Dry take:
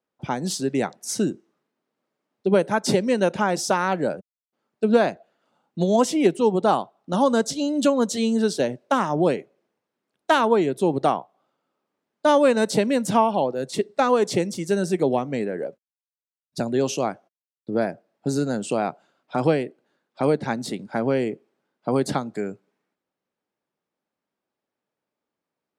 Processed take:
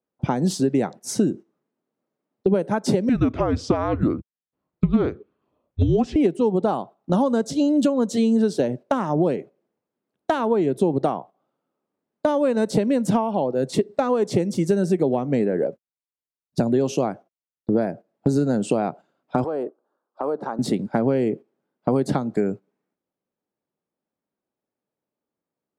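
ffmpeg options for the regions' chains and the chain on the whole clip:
-filter_complex "[0:a]asettb=1/sr,asplit=3[a][b][c];[a]atrim=end=3.094[d];[b]atrim=start=3.09:end=6.16,asetpts=PTS-STARTPTS,afade=t=in:d=0.004:c=qsin,afade=t=out:st=3.066:d=0.004:c=qsin,afreqshift=-260,highpass=110,lowpass=3.8k[e];[c]atrim=start=6.156[f];[d][e]acrossfade=d=0.004:c1=hsin:c2=qsin[g];[g][f]acrossfade=d=0.004:c1=qsin:c2=hsin,asettb=1/sr,asplit=3[h][i][j];[h]atrim=end=19.444[k];[i]atrim=start=19.44:end=20.59,asetpts=PTS-STARTPTS,afade=t=in:d=0.004:c=qsin,afade=t=out:st=1.146:d=0.004:c=qsin,highpass=420,highshelf=f=1.6k:t=q:w=3:g=-9,acompressor=threshold=-32dB:ratio=3:attack=3.2:release=140:knee=1:detection=peak[l];[j]atrim=start=20.586[m];[k][l]acrossfade=d=0.004:c1=hsin:c2=qsin[n];[n][m]acrossfade=d=0.004:c1=qsin:c2=hsin,agate=range=-10dB:threshold=-38dB:ratio=16:detection=peak,acompressor=threshold=-26dB:ratio=6,tiltshelf=f=970:g=5.5,volume=5.5dB"

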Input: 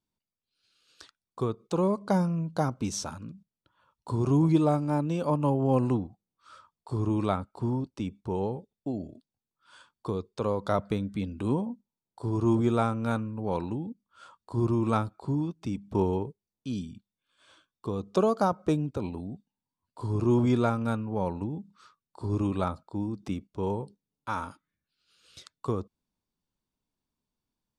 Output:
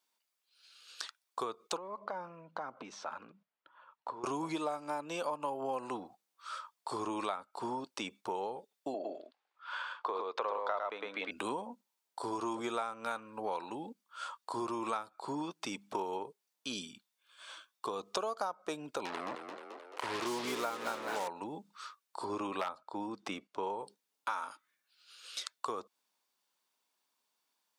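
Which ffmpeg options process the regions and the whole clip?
-filter_complex "[0:a]asettb=1/sr,asplit=3[a][b][c];[a]atrim=end=1.774[d];[b]atrim=start=1.77:end=4.24,asetpts=PTS-STARTPTS,afade=t=in:d=0.004:c=qsin,afade=t=out:st=2.466:d=0.004:c=qsin,acompressor=threshold=-40dB:ratio=4:attack=3.2:release=140:knee=1:detection=peak,highpass=110,lowpass=2.1k,aphaser=in_gain=1:out_gain=1:delay=2.6:decay=0.23:speed=1:type=triangular[e];[c]atrim=start=4.236[f];[d][e]acrossfade=d=0.004:c1=hsin:c2=qsin[g];[g][f]acrossfade=d=0.004:c1=qsin:c2=hsin,asettb=1/sr,asplit=3[h][i][j];[h]atrim=end=8.944[k];[i]atrim=start=8.94:end=11.31,asetpts=PTS-STARTPTS,afade=t=in:d=0.004:c=qsin,afade=t=out:st=2.366:d=0.004:c=qsin,acontrast=82,highpass=440,lowpass=2.4k,aecho=1:1:107:0.668,atrim=end_sample=104517[l];[j]atrim=start=11.306[m];[k][l]acrossfade=d=0.004:c1=hsin:c2=qsin[n];[n][m]acrossfade=d=0.004:c1=qsin:c2=hsin,asettb=1/sr,asplit=3[o][p][q];[o]atrim=end=19.054[r];[p]atrim=start=19.05:end=21.28,asetpts=PTS-STARTPTS,afade=t=in:d=0.004:c=qsin,afade=t=out:st=2.226:d=0.004:c=qsin,highshelf=f=5.9k:g=-7,acrusher=bits=5:mix=0:aa=0.5,asplit=8[s][t][u][v][w][x][y][z];[t]adelay=217,afreqshift=63,volume=-10dB[aa];[u]adelay=434,afreqshift=126,volume=-14.4dB[ab];[v]adelay=651,afreqshift=189,volume=-18.9dB[ac];[w]adelay=868,afreqshift=252,volume=-23.3dB[ad];[x]adelay=1085,afreqshift=315,volume=-27.7dB[ae];[y]adelay=1302,afreqshift=378,volume=-32.2dB[af];[z]adelay=1519,afreqshift=441,volume=-36.6dB[ag];[s][aa][ab][ac][ad][ae][af][ag]amix=inputs=8:normalize=0,atrim=end_sample=98343[ah];[q]atrim=start=21.276[ai];[r][ah]acrossfade=d=0.004:c1=hsin:c2=qsin[aj];[aj][ai]acrossfade=d=0.004:c1=qsin:c2=hsin,asettb=1/sr,asplit=3[ak][al][am];[ak]atrim=end=22.244[an];[al]atrim=start=22.24:end=23.79,asetpts=PTS-STARTPTS,afade=t=in:d=0.004:c=qsin,afade=t=out:st=1.546:d=0.004:c=qsin,highshelf=f=5.2k:g=-11,aeval=exprs='0.126*(abs(mod(val(0)/0.126+3,4)-2)-1)':c=same[ao];[am]atrim=start=23.786[ap];[an][ao]acrossfade=d=0.004:c1=hsin:c2=qsin[aq];[aq][ap]acrossfade=d=0.004:c1=qsin:c2=hsin,highpass=750,acompressor=threshold=-44dB:ratio=6,volume=10dB"

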